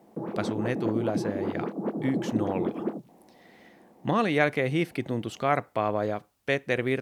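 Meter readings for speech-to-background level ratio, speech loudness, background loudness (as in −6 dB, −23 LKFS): 3.5 dB, −29.0 LKFS, −32.5 LKFS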